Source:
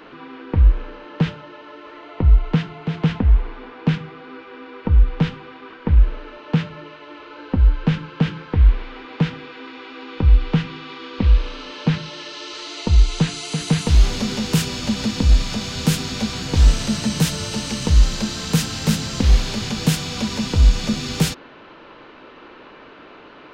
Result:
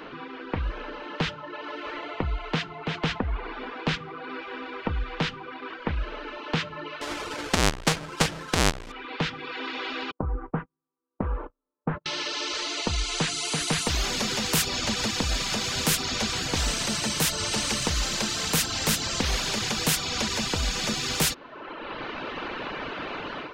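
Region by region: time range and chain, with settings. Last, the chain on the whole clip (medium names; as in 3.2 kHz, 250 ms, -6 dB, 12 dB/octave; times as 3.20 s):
7.01–8.92 s: square wave that keeps the level + low-pass 7 kHz
10.11–12.06 s: gate -26 dBFS, range -45 dB + low-pass 1.2 kHz 24 dB/octave
whole clip: reverb removal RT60 0.88 s; level rider; spectrum-flattening compressor 2:1; trim -4 dB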